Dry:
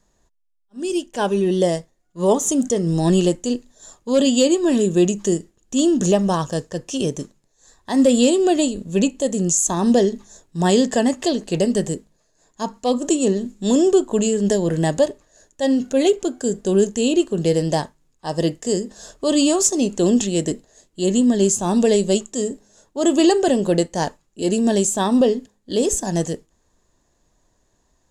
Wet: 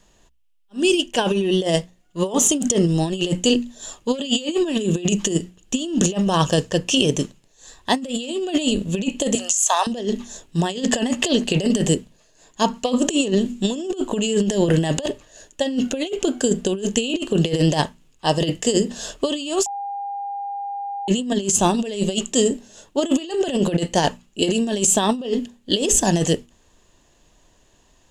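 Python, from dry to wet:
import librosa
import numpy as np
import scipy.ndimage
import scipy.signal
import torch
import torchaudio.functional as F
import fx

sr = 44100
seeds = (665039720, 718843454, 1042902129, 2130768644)

y = fx.steep_highpass(x, sr, hz=600.0, slope=36, at=(9.35, 9.87))
y = fx.edit(y, sr, fx.bleep(start_s=19.66, length_s=1.42, hz=804.0, db=-11.0), tone=tone)
y = fx.peak_eq(y, sr, hz=2900.0, db=11.5, octaves=0.55)
y = fx.hum_notches(y, sr, base_hz=60, count=4)
y = fx.over_compress(y, sr, threshold_db=-21.0, ratio=-0.5)
y = y * 10.0 ** (2.0 / 20.0)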